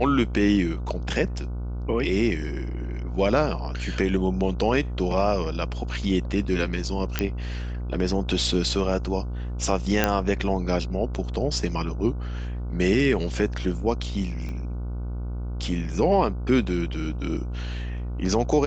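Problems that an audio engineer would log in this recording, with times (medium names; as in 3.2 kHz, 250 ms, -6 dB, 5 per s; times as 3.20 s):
buzz 60 Hz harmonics 25 -30 dBFS
7.19 s: pop -8 dBFS
10.04 s: pop -5 dBFS
14.49 s: pop -24 dBFS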